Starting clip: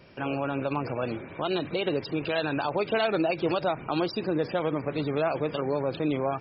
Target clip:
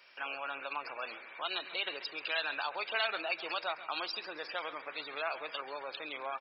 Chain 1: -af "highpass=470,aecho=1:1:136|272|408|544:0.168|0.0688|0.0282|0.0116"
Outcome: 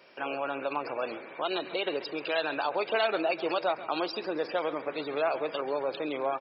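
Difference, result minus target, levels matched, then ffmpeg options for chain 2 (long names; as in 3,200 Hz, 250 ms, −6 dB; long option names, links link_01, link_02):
500 Hz band +7.0 dB
-af "highpass=1300,aecho=1:1:136|272|408|544:0.168|0.0688|0.0282|0.0116"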